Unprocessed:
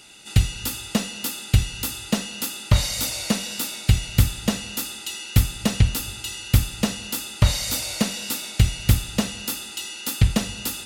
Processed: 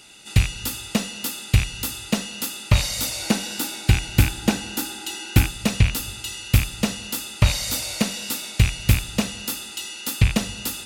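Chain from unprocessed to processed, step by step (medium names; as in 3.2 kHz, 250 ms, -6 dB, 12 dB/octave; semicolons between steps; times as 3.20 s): rattle on loud lows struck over -25 dBFS, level -14 dBFS; 3.20–5.48 s: small resonant body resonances 320/810/1500 Hz, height 8 dB -> 12 dB, ringing for 30 ms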